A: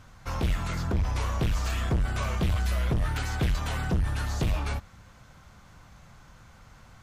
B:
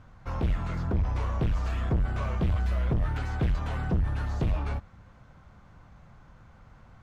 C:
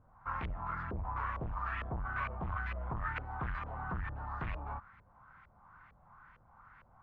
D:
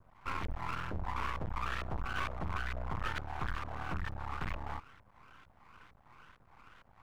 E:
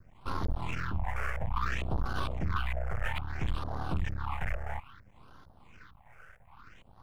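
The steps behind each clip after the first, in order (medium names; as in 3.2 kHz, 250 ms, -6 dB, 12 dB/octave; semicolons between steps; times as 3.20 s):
low-pass 1.2 kHz 6 dB/octave
resonant low shelf 760 Hz -10.5 dB, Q 1.5; LFO low-pass saw up 2.2 Hz 480–2400 Hz; trim -3 dB
half-wave rectifier; trim +4.5 dB
phase shifter stages 6, 0.6 Hz, lowest notch 260–2400 Hz; trim +6 dB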